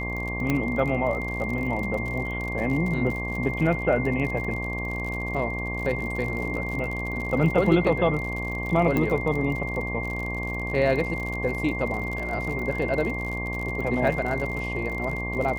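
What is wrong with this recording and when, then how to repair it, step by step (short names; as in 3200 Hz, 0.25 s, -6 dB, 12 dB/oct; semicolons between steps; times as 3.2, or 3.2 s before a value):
buzz 60 Hz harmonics 19 -32 dBFS
crackle 58/s -31 dBFS
tone 2100 Hz -31 dBFS
0.5 pop -11 dBFS
8.97 pop -13 dBFS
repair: de-click; de-hum 60 Hz, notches 19; notch 2100 Hz, Q 30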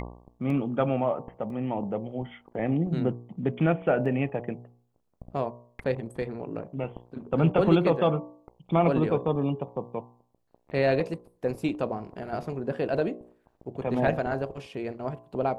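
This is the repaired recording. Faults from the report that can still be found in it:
0.5 pop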